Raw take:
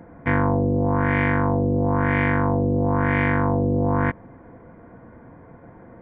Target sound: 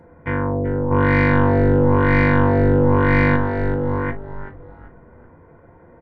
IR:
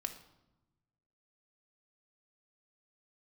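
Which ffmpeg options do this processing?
-filter_complex "[0:a]asettb=1/sr,asplit=3[a][b][c];[a]atrim=end=0.914[d];[b]atrim=start=0.91:end=3.36,asetpts=PTS-STARTPTS,afade=t=in:d=0.004:c=qsin,afade=t=out:st=2.446:d=0.004:c=qsin,acontrast=78[e];[c]atrim=start=3.356[f];[d][e]acrossfade=d=0.004:c1=hsin:c2=qsin[g];[g][f]acrossfade=d=0.004:c1=qsin:c2=hsin,asplit=5[h][i][j][k][l];[i]adelay=384,afreqshift=-100,volume=-11.5dB[m];[j]adelay=768,afreqshift=-200,volume=-20.4dB[n];[k]adelay=1152,afreqshift=-300,volume=-29.2dB[o];[l]adelay=1536,afreqshift=-400,volume=-38.1dB[p];[h][m][n][o][p]amix=inputs=5:normalize=0[q];[1:a]atrim=start_sample=2205,atrim=end_sample=3969,asetrate=66150,aresample=44100[r];[q][r]afir=irnorm=-1:irlink=0,volume=2dB"

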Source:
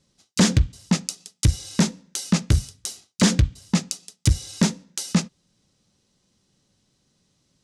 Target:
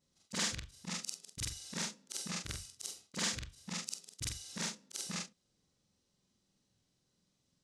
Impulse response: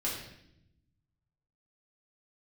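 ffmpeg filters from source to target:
-filter_complex "[0:a]afftfilt=real='re':imag='-im':win_size=4096:overlap=0.75,acrossover=split=930[a][b];[a]acompressor=threshold=-37dB:ratio=8[c];[c][b]amix=inputs=2:normalize=0,adynamicequalizer=threshold=0.00158:dfrequency=460:dqfactor=1.6:tfrequency=460:tqfactor=1.6:attack=5:release=100:ratio=0.375:range=2.5:mode=boostabove:tftype=bell,volume=-6.5dB"

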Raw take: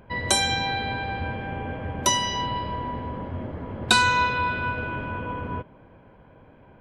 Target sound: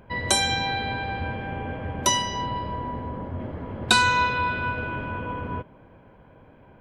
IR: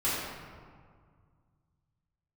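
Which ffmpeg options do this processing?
-filter_complex "[0:a]asettb=1/sr,asplit=3[a][b][c];[a]atrim=end=2.224[d];[b]atrim=start=2.22:end=3.4,asetpts=PTS-STARTPTS,afade=t=in:d=0.004:c=qsin,afade=t=out:st=1.176:d=0.004:c=qsin,equalizer=f=3.3k:t=o:w=1.8:g=-5.5[e];[c]atrim=start=3.396[f];[d][e]acrossfade=d=0.004:c1=hsin:c2=qsin[g];[g][f]acrossfade=d=0.004:c1=qsin:c2=hsin"

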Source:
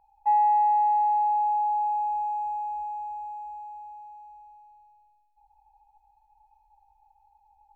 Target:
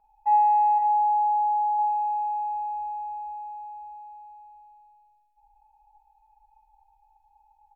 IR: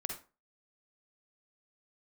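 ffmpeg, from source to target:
-filter_complex "[0:a]asettb=1/sr,asplit=3[a][b][c];[a]atrim=end=0.784[d];[b]atrim=start=0.78:end=1.79,asetpts=PTS-STARTPTS,afade=t=in:d=0.004:c=qsin,afade=t=out:st=1.006:d=0.004:c=qsin,lowpass=2k[e];[c]atrim=start=1.786[f];[d][e]acrossfade=d=0.004:c1=hsin:c2=qsin[g];[g][f]acrossfade=d=0.004:c1=qsin:c2=hsin,aecho=1:1:4.7:0.62[h];[1:a]atrim=start_sample=2205,asetrate=57330,aresample=44100[i];[h][i]afir=irnorm=-1:irlink=0"

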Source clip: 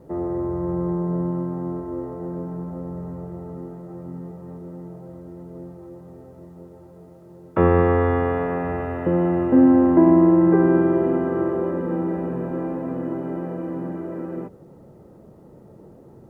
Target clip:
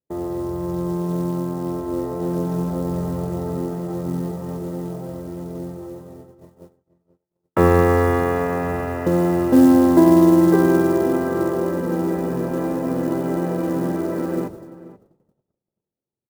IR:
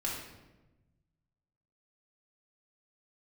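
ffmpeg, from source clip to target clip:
-filter_complex "[0:a]acrusher=bits=8:mode=log:mix=0:aa=0.000001,highshelf=f=2.2k:g=6.5,dynaudnorm=f=860:g=5:m=11dB,agate=range=-45dB:threshold=-36dB:ratio=16:detection=peak,asplit=2[a][b];[b]adelay=484,volume=-17dB,highshelf=f=4k:g=-10.9[c];[a][c]amix=inputs=2:normalize=0,volume=-1dB"

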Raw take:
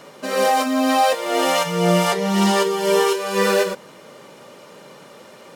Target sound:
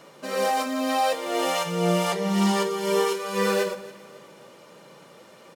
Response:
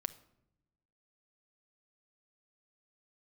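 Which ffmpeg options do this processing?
-filter_complex "[0:a]aecho=1:1:276|552|828:0.106|0.0455|0.0196[a];[1:a]atrim=start_sample=2205[b];[a][b]afir=irnorm=-1:irlink=0,volume=-5.5dB"

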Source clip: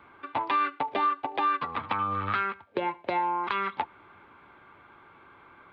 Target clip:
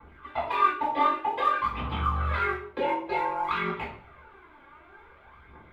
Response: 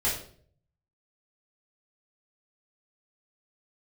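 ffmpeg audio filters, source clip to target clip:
-filter_complex "[0:a]aeval=exprs='val(0)*sin(2*PI*23*n/s)':c=same,aphaser=in_gain=1:out_gain=1:delay=3.7:decay=0.73:speed=0.54:type=triangular[a];[1:a]atrim=start_sample=2205[b];[a][b]afir=irnorm=-1:irlink=0,volume=-8dB"

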